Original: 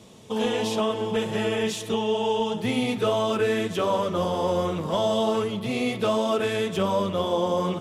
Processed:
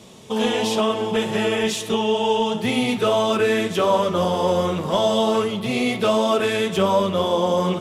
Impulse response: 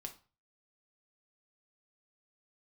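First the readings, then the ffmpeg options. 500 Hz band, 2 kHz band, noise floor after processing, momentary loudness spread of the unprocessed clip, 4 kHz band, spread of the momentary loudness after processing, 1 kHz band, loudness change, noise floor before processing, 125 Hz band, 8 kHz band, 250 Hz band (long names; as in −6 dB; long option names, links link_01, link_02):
+4.5 dB, +6.0 dB, −31 dBFS, 3 LU, +6.0 dB, 3 LU, +5.0 dB, +4.5 dB, −35 dBFS, +3.0 dB, +6.0 dB, +4.5 dB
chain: -filter_complex "[0:a]asplit=2[link_01][link_02];[1:a]atrim=start_sample=2205,lowshelf=frequency=420:gain=-7.5[link_03];[link_02][link_03]afir=irnorm=-1:irlink=0,volume=4.5dB[link_04];[link_01][link_04]amix=inputs=2:normalize=0"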